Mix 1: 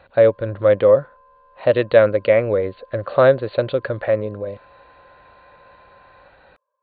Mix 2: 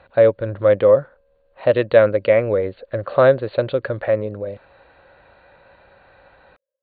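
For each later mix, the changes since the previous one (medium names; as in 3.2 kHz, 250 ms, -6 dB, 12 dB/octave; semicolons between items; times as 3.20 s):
background: add vowel filter e; master: add treble shelf 8.6 kHz -11 dB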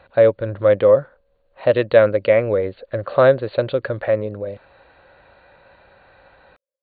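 background -6.0 dB; master: add treble shelf 8.6 kHz +11 dB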